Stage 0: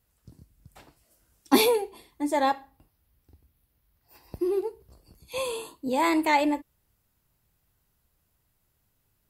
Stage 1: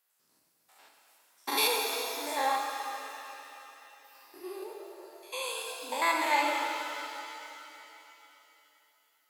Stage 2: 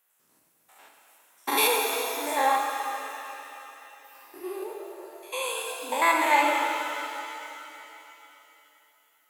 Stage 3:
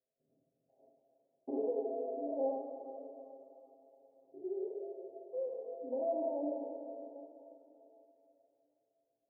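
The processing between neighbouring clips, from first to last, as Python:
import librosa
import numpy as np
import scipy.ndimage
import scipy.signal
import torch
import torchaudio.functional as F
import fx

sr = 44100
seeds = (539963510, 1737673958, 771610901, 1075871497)

y1 = fx.spec_steps(x, sr, hold_ms=100)
y1 = scipy.signal.sosfilt(scipy.signal.butter(2, 840.0, 'highpass', fs=sr, output='sos'), y1)
y1 = fx.rev_shimmer(y1, sr, seeds[0], rt60_s=3.1, semitones=7, shimmer_db=-8, drr_db=0.5)
y2 = fx.peak_eq(y1, sr, hz=4700.0, db=-9.5, octaves=0.58)
y2 = y2 * 10.0 ** (6.0 / 20.0)
y3 = scipy.signal.sosfilt(scipy.signal.cheby1(6, 1.0, 680.0, 'lowpass', fs=sr, output='sos'), y2)
y3 = y3 + 0.8 * np.pad(y3, (int(7.5 * sr / 1000.0), 0))[:len(y3)]
y3 = y3 + 10.0 ** (-23.5 / 20.0) * np.pad(y3, (int(794 * sr / 1000.0), 0))[:len(y3)]
y3 = y3 * 10.0 ** (-6.0 / 20.0)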